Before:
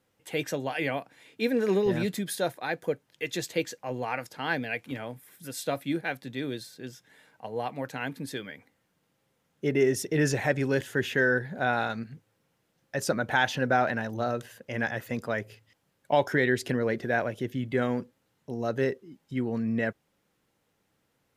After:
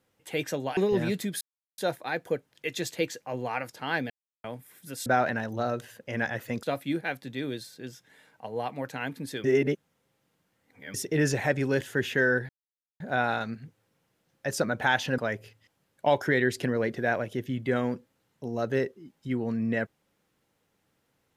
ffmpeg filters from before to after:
ffmpeg -i in.wav -filter_complex "[0:a]asplit=11[link_01][link_02][link_03][link_04][link_05][link_06][link_07][link_08][link_09][link_10][link_11];[link_01]atrim=end=0.772[link_12];[link_02]atrim=start=1.708:end=2.35,asetpts=PTS-STARTPTS,afade=type=out:start_time=0.638:duration=0.004:curve=hsin,apad=pad_dur=0.37[link_13];[link_03]atrim=start=2.35:end=4.67,asetpts=PTS-STARTPTS,afade=type=in:duration=0.004:curve=hsin,afade=type=out:start_time=2.316:duration=0.004:curve=hsin[link_14];[link_04]atrim=start=4.67:end=5.01,asetpts=PTS-STARTPTS,volume=0[link_15];[link_05]atrim=start=5.01:end=5.632,asetpts=PTS-STARTPTS,afade=type=in:duration=0.004:curve=hsin[link_16];[link_06]atrim=start=13.668:end=15.242[link_17];[link_07]atrim=start=5.628:end=8.442[link_18];[link_08]atrim=start=8.438:end=9.942,asetpts=PTS-STARTPTS,areverse[link_19];[link_09]atrim=start=9.938:end=11.49,asetpts=PTS-STARTPTS,afade=type=out:start_time=1.548:duration=0.004:curve=hsin,apad=pad_dur=0.51[link_20];[link_10]atrim=start=11.49:end=13.672,asetpts=PTS-STARTPTS,afade=type=in:duration=0.004:curve=hsin[link_21];[link_11]atrim=start=15.238[link_22];[link_13][link_14][link_15][link_16]concat=n=4:v=0:a=1[link_23];[link_12][link_23]acrossfade=duration=0.004:curve1=hsin:curve2=hsin[link_24];[link_24][link_17]acrossfade=duration=0.004:curve1=hsin:curve2=hsin[link_25];[link_25][link_18]acrossfade=duration=0.004:curve1=hsin:curve2=hsin[link_26];[link_26][link_19]acrossfade=duration=0.004:curve1=hsin:curve2=hsin[link_27];[link_20][link_21]concat=n=2:v=0:a=1[link_28];[link_27][link_28]acrossfade=duration=0.004:curve1=hsin:curve2=hsin[link_29];[link_29][link_22]acrossfade=duration=0.004:curve1=hsin:curve2=hsin" out.wav

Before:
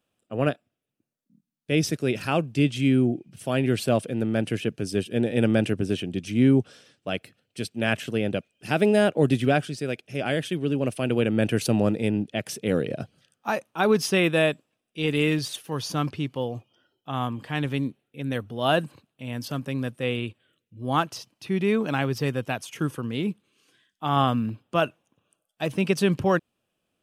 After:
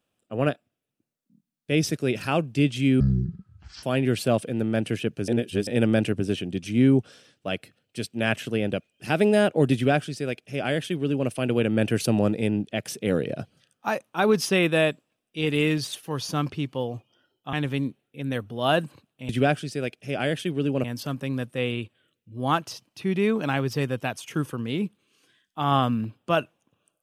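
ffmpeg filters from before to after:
ffmpeg -i in.wav -filter_complex "[0:a]asplit=8[link_01][link_02][link_03][link_04][link_05][link_06][link_07][link_08];[link_01]atrim=end=3.004[link_09];[link_02]atrim=start=3:end=3.44,asetpts=PTS-STARTPTS,asetrate=23373,aresample=44100,atrim=end_sample=36611,asetpts=PTS-STARTPTS[link_10];[link_03]atrim=start=3.436:end=4.892[link_11];[link_04]atrim=start=4.888:end=5.282,asetpts=PTS-STARTPTS,areverse[link_12];[link_05]atrim=start=5.278:end=17.142[link_13];[link_06]atrim=start=17.528:end=19.292[link_14];[link_07]atrim=start=9.348:end=10.902[link_15];[link_08]atrim=start=19.288[link_16];[link_09][link_10]acrossfade=duration=0.004:curve1=hsin:curve2=hsin[link_17];[link_17][link_11]acrossfade=duration=0.004:curve1=hsin:curve2=hsin[link_18];[link_18][link_12]acrossfade=duration=0.004:curve1=hsin:curve2=hsin[link_19];[link_19][link_13]acrossfade=duration=0.004:curve1=hsin:curve2=hsin[link_20];[link_20][link_14]acrossfade=duration=0.004:curve1=hsin:curve2=hsin[link_21];[link_21][link_15]acrossfade=duration=0.004:curve1=hsin:curve2=hsin[link_22];[link_22][link_16]acrossfade=duration=0.004:curve1=hsin:curve2=hsin" out.wav

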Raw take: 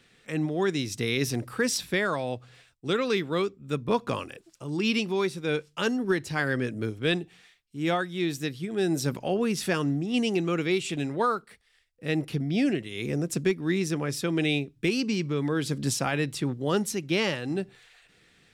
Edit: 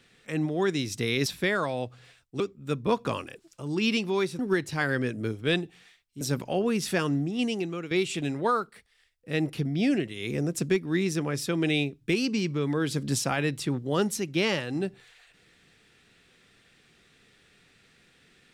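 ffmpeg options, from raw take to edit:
ffmpeg -i in.wav -filter_complex "[0:a]asplit=6[link_01][link_02][link_03][link_04][link_05][link_06];[link_01]atrim=end=1.262[link_07];[link_02]atrim=start=1.758:end=2.902[link_08];[link_03]atrim=start=3.418:end=5.412[link_09];[link_04]atrim=start=5.968:end=7.792[link_10];[link_05]atrim=start=8.958:end=10.66,asetpts=PTS-STARTPTS,afade=type=out:start_time=1.032:duration=0.67:silence=0.281838[link_11];[link_06]atrim=start=10.66,asetpts=PTS-STARTPTS,afade=type=in:duration=0.004:curve=hsin:silence=0.281838[link_12];[link_07][link_08]acrossfade=duration=0.004:curve1=hsin:curve2=hsin[link_13];[link_13][link_09]acrossfade=duration=0.004:curve1=hsin:curve2=hsin[link_14];[link_14][link_10]acrossfade=duration=0.004:curve1=hsin:curve2=hsin[link_15];[link_11][link_12]concat=n=2:v=0:a=1[link_16];[link_15][link_16]acrossfade=duration=0.004:curve1=hsin:curve2=hsin" out.wav

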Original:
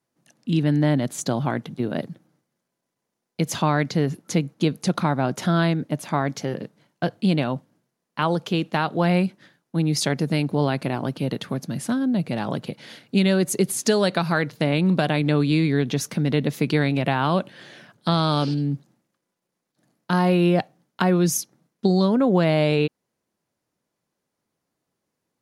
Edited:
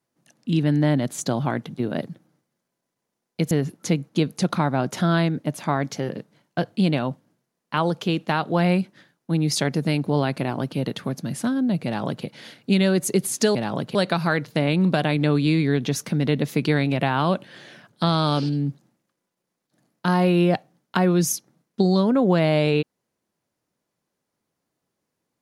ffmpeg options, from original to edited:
ffmpeg -i in.wav -filter_complex "[0:a]asplit=4[link_01][link_02][link_03][link_04];[link_01]atrim=end=3.512[link_05];[link_02]atrim=start=3.958:end=14.002[link_06];[link_03]atrim=start=12.298:end=12.702[link_07];[link_04]atrim=start=13.998[link_08];[link_05][link_06]acrossfade=duration=0.004:curve1=hsin:curve2=hsin[link_09];[link_09][link_07]acrossfade=duration=0.004:curve1=hsin:curve2=hsin[link_10];[link_10][link_08]acrossfade=duration=0.004:curve1=hsin:curve2=hsin" out.wav

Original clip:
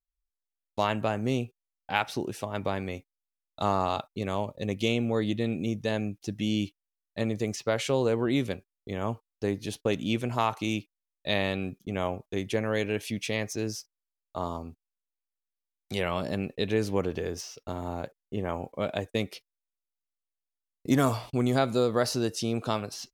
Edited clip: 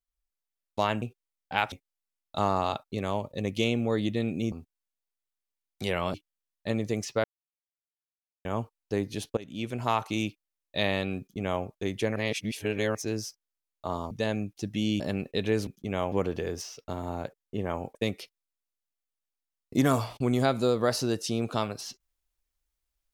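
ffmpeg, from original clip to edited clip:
ffmpeg -i in.wav -filter_complex "[0:a]asplit=15[link_01][link_02][link_03][link_04][link_05][link_06][link_07][link_08][link_09][link_10][link_11][link_12][link_13][link_14][link_15];[link_01]atrim=end=1.022[link_16];[link_02]atrim=start=1.398:end=2.102[link_17];[link_03]atrim=start=2.958:end=5.762[link_18];[link_04]atrim=start=14.618:end=16.242[link_19];[link_05]atrim=start=6.648:end=7.75,asetpts=PTS-STARTPTS,afade=type=out:start_time=1.098:duration=0.004:curve=hsin[link_20];[link_06]atrim=start=7.75:end=8.96,asetpts=PTS-STARTPTS,volume=0[link_21];[link_07]atrim=start=8.96:end=9.88,asetpts=PTS-STARTPTS,afade=type=in:duration=0.004:curve=hsin,afade=type=out:start_time=0.916:duration=0.004:curve=hsin:silence=0.0944061[link_22];[link_08]atrim=start=9.88:end=12.672,asetpts=PTS-STARTPTS,afade=type=in:duration=0.55:silence=0.0944061[link_23];[link_09]atrim=start=12.668:end=13.462,asetpts=PTS-STARTPTS,areverse[link_24];[link_10]atrim=start=13.458:end=14.622[link_25];[link_11]atrim=start=5.758:end=6.652[link_26];[link_12]atrim=start=16.238:end=16.912[link_27];[link_13]atrim=start=11.698:end=12.152[link_28];[link_14]atrim=start=16.908:end=18.742[link_29];[link_15]atrim=start=19.078[link_30];[link_16][link_17]acrossfade=duration=0.004:curve1=hsin:curve2=hsin[link_31];[link_31][link_18]acrossfade=duration=0.004:curve1=hsin:curve2=hsin[link_32];[link_32][link_19]acrossfade=duration=0.004:curve1=hsin:curve2=hsin[link_33];[link_20][link_21][link_22][link_23]concat=n=4:v=0:a=1[link_34];[link_33][link_34]acrossfade=duration=0.004:curve1=hsin:curve2=hsin[link_35];[link_35][link_24]acrossfade=duration=0.004:curve1=hsin:curve2=hsin[link_36];[link_36][link_25]acrossfade=duration=0.004:curve1=hsin:curve2=hsin[link_37];[link_37][link_26]acrossfade=duration=0.004:curve1=hsin:curve2=hsin[link_38];[link_38][link_27]acrossfade=duration=0.004:curve1=hsin:curve2=hsin[link_39];[link_39][link_28]acrossfade=duration=0.004:curve1=hsin:curve2=hsin[link_40];[link_40][link_29]acrossfade=duration=0.004:curve1=hsin:curve2=hsin[link_41];[link_41][link_30]acrossfade=duration=0.004:curve1=hsin:curve2=hsin" out.wav

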